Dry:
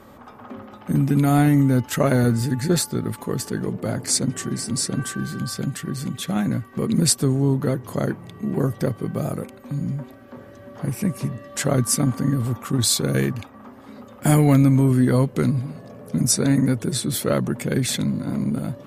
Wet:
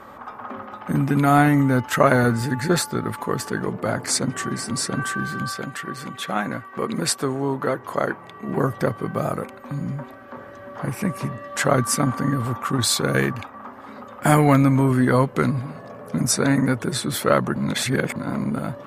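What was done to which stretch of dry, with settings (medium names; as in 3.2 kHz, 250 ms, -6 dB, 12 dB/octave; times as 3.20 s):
5.52–8.49 s: tone controls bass -9 dB, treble -3 dB
17.56–18.16 s: reverse
whole clip: peaking EQ 1.2 kHz +12.5 dB 2.3 oct; trim -3 dB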